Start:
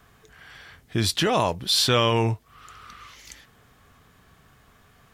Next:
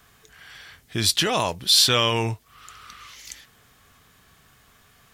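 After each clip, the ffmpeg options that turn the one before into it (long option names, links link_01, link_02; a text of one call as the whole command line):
ffmpeg -i in.wav -af "highshelf=frequency=2000:gain=9.5,volume=-3dB" out.wav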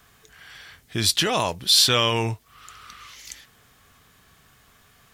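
ffmpeg -i in.wav -af "acrusher=bits=11:mix=0:aa=0.000001" out.wav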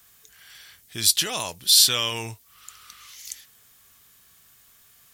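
ffmpeg -i in.wav -af "crystalizer=i=4.5:c=0,volume=-10dB" out.wav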